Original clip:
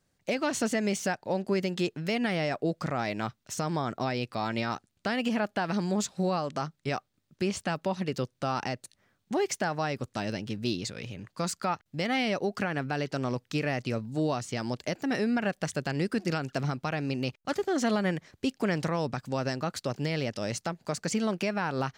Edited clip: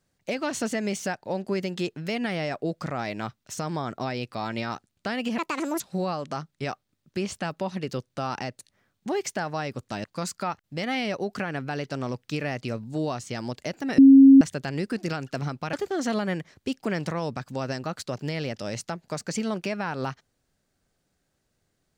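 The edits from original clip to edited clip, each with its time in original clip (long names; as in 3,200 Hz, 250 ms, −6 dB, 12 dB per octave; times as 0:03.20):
0:05.38–0:06.05: play speed 159%
0:10.29–0:11.26: remove
0:15.20–0:15.63: beep over 271 Hz −8 dBFS
0:16.95–0:17.50: remove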